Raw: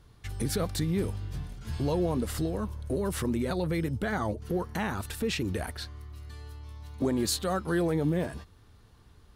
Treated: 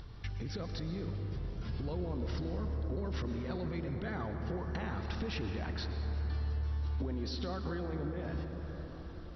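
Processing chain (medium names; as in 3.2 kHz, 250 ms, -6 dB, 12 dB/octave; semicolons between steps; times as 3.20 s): bass shelf 110 Hz +5 dB; upward compressor, threshold -44 dBFS; peak limiter -24.5 dBFS, peak gain reduction 8.5 dB; compression, threshold -38 dBFS, peak gain reduction 10 dB; reverberation RT60 5.8 s, pre-delay 103 ms, DRR 4 dB; trim +1.5 dB; MP2 48 kbps 22.05 kHz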